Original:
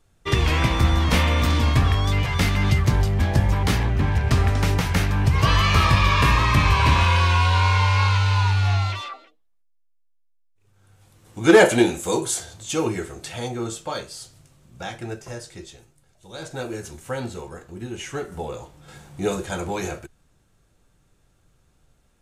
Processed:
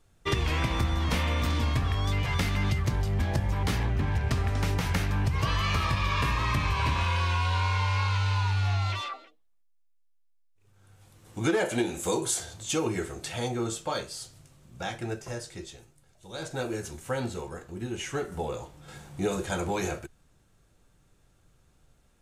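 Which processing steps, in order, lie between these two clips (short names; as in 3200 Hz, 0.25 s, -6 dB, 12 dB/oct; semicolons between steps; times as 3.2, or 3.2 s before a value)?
compressor, threshold -22 dBFS, peak gain reduction 13.5 dB; gain -1.5 dB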